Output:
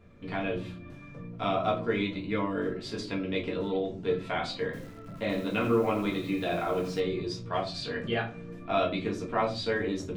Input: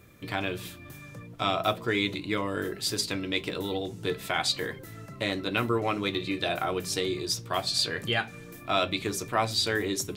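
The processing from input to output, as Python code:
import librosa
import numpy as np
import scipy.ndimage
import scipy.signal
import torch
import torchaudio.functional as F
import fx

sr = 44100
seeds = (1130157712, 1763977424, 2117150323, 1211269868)

y = fx.spacing_loss(x, sr, db_at_10k=24)
y = fx.room_shoebox(y, sr, seeds[0], volume_m3=160.0, walls='furnished', distance_m=1.7)
y = fx.echo_crushed(y, sr, ms=83, feedback_pct=35, bits=7, wet_db=-9.5, at=(4.65, 7.0))
y = y * librosa.db_to_amplitude(-3.0)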